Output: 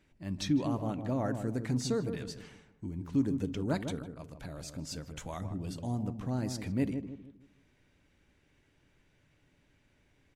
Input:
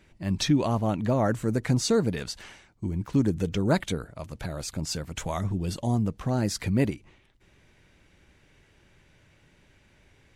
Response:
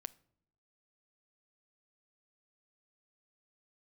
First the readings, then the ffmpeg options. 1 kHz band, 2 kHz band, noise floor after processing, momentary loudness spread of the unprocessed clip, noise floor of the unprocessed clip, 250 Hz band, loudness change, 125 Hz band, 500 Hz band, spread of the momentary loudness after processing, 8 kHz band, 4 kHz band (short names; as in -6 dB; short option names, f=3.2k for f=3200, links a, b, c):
-9.0 dB, -10.0 dB, -70 dBFS, 11 LU, -61 dBFS, -6.0 dB, -7.5 dB, -8.5 dB, -9.0 dB, 14 LU, -10.0 dB, -10.0 dB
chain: -filter_complex "[0:a]equalizer=f=270:t=o:w=0.29:g=6,asplit=2[a][b];[b]adelay=155,lowpass=f=840:p=1,volume=-6.5dB,asplit=2[c][d];[d]adelay=155,lowpass=f=840:p=1,volume=0.4,asplit=2[e][f];[f]adelay=155,lowpass=f=840:p=1,volume=0.4,asplit=2[g][h];[h]adelay=155,lowpass=f=840:p=1,volume=0.4,asplit=2[i][j];[j]adelay=155,lowpass=f=840:p=1,volume=0.4[k];[a][c][e][g][i][k]amix=inputs=6:normalize=0[l];[1:a]atrim=start_sample=2205,afade=t=out:st=0.13:d=0.01,atrim=end_sample=6174[m];[l][m]afir=irnorm=-1:irlink=0,volume=-6dB"